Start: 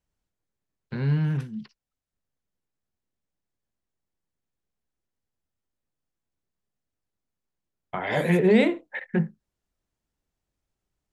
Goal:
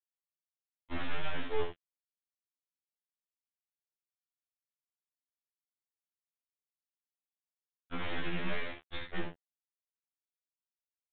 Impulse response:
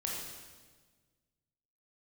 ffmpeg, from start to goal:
-filter_complex "[0:a]asubboost=boost=6:cutoff=230,acrossover=split=1100[link_01][link_02];[link_01]acompressor=threshold=-30dB:ratio=12[link_03];[link_03][link_02]amix=inputs=2:normalize=0,alimiter=level_in=2.5dB:limit=-24dB:level=0:latency=1:release=364,volume=-2.5dB,acrossover=split=110|240[link_04][link_05][link_06];[link_04]acompressor=threshold=-56dB:ratio=4[link_07];[link_05]acompressor=threshold=-41dB:ratio=4[link_08];[link_06]acompressor=threshold=-42dB:ratio=4[link_09];[link_07][link_08][link_09]amix=inputs=3:normalize=0,aeval=exprs='(tanh(70.8*val(0)+0.25)-tanh(0.25))/70.8':channel_layout=same,acrusher=bits=6:mix=0:aa=0.000001,aecho=1:1:27|70:0.596|0.473,aeval=exprs='abs(val(0))':channel_layout=same,aresample=8000,aresample=44100,afftfilt=real='re*2*eq(mod(b,4),0)':imag='im*2*eq(mod(b,4),0)':win_size=2048:overlap=0.75,volume=7dB"

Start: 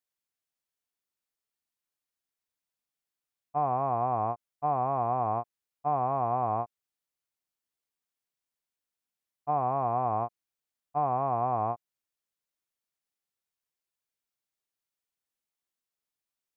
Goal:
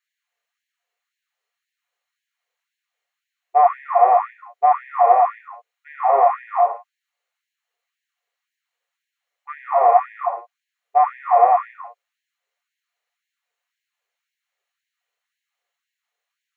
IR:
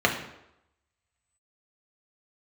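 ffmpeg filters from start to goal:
-filter_complex "[0:a]aeval=exprs='0.141*(cos(1*acos(clip(val(0)/0.141,-1,1)))-cos(1*PI/2))+0.01*(cos(2*acos(clip(val(0)/0.141,-1,1)))-cos(2*PI/2))':channel_layout=same[link_01];[1:a]atrim=start_sample=2205,afade=type=out:start_time=0.23:duration=0.01,atrim=end_sample=10584[link_02];[link_01][link_02]afir=irnorm=-1:irlink=0,afftfilt=real='re*gte(b*sr/1024,380*pow(1600/380,0.5+0.5*sin(2*PI*1.9*pts/sr)))':imag='im*gte(b*sr/1024,380*pow(1600/380,0.5+0.5*sin(2*PI*1.9*pts/sr)))':win_size=1024:overlap=0.75,volume=-1.5dB"

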